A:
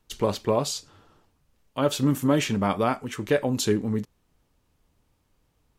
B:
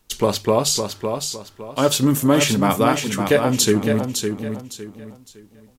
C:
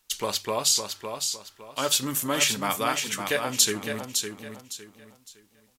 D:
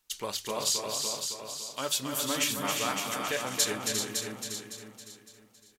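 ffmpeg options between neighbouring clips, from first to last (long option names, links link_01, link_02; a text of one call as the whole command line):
ffmpeg -i in.wav -af "highshelf=frequency=4200:gain=8,bandreject=frequency=50:width_type=h:width=6,bandreject=frequency=100:width_type=h:width=6,bandreject=frequency=150:width_type=h:width=6,aecho=1:1:559|1118|1677|2236:0.473|0.137|0.0398|0.0115,volume=5.5dB" out.wav
ffmpeg -i in.wav -af "tiltshelf=frequency=760:gain=-8,volume=-9dB" out.wav
ffmpeg -i in.wav -af "aecho=1:1:271|351|388|622:0.501|0.398|0.398|0.106,volume=-6.5dB" out.wav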